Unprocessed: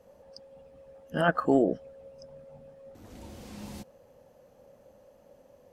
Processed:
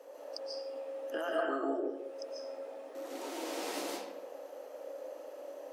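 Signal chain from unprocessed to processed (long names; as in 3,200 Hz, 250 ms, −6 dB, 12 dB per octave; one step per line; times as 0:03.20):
Chebyshev high-pass filter 280 Hz, order 6
downward compressor 10 to 1, threshold −43 dBFS, peak gain reduction 23 dB
convolution reverb RT60 0.90 s, pre-delay 100 ms, DRR −4 dB
level +6.5 dB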